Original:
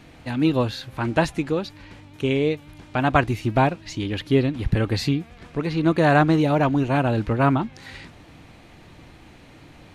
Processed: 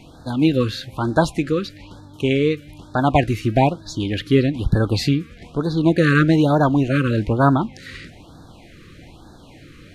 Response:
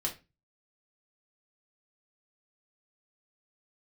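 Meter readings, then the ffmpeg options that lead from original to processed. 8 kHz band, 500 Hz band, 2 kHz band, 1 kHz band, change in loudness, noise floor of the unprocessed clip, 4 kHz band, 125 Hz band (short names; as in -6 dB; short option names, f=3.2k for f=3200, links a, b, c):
+3.5 dB, +2.5 dB, +2.0 dB, +1.0 dB, +3.0 dB, -48 dBFS, +3.5 dB, +3.5 dB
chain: -filter_complex "[0:a]asplit=2[a][b];[1:a]atrim=start_sample=2205[c];[b][c]afir=irnorm=-1:irlink=0,volume=-22.5dB[d];[a][d]amix=inputs=2:normalize=0,afftfilt=real='re*(1-between(b*sr/1024,740*pow(2500/740,0.5+0.5*sin(2*PI*1.1*pts/sr))/1.41,740*pow(2500/740,0.5+0.5*sin(2*PI*1.1*pts/sr))*1.41))':imag='im*(1-between(b*sr/1024,740*pow(2500/740,0.5+0.5*sin(2*PI*1.1*pts/sr))/1.41,740*pow(2500/740,0.5+0.5*sin(2*PI*1.1*pts/sr))*1.41))':win_size=1024:overlap=0.75,volume=3dB"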